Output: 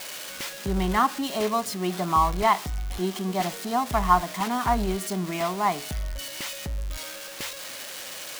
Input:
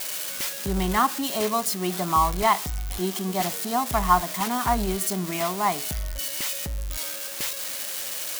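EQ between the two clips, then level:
high-shelf EQ 6,800 Hz −11 dB
0.0 dB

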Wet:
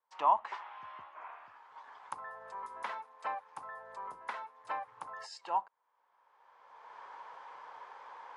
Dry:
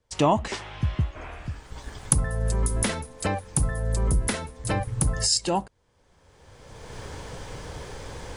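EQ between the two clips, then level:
four-pole ladder band-pass 1,100 Hz, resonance 60%
+2.5 dB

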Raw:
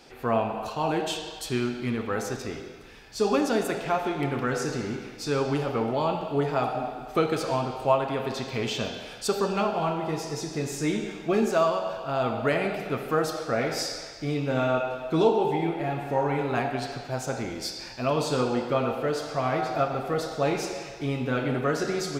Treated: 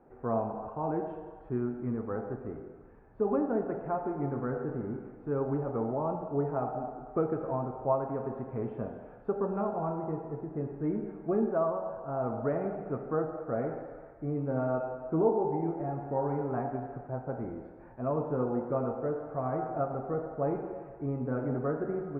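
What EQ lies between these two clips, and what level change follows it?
Bessel low-pass filter 880 Hz, order 6
−4.0 dB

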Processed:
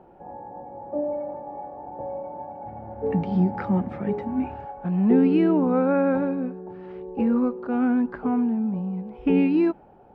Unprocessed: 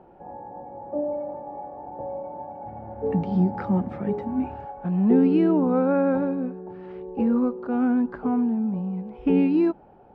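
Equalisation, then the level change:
dynamic equaliser 2,200 Hz, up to +5 dB, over −47 dBFS, Q 1.3
0.0 dB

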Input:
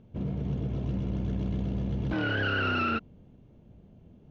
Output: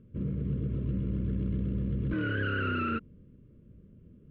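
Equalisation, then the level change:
Butterworth band-reject 780 Hz, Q 1.3
high-frequency loss of the air 480 metres
0.0 dB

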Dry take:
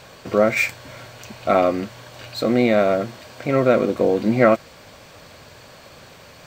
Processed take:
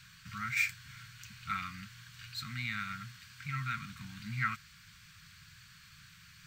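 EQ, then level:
elliptic band-stop filter 170–1,400 Hz, stop band 60 dB
dynamic equaliser 220 Hz, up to −5 dB, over −43 dBFS, Q 1.2
−9.0 dB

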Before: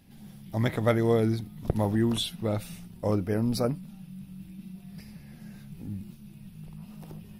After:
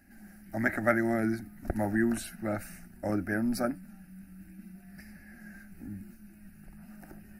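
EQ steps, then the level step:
parametric band 1,600 Hz +11.5 dB 0.49 octaves
phaser with its sweep stopped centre 690 Hz, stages 8
0.0 dB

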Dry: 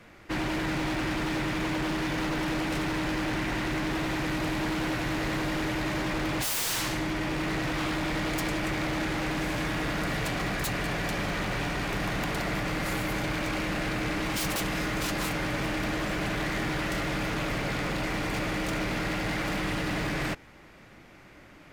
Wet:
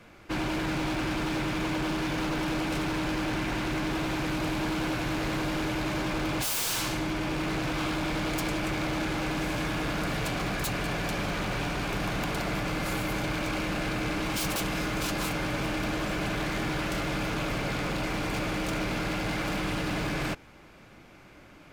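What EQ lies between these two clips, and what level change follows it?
notch filter 1,900 Hz, Q 9.3
0.0 dB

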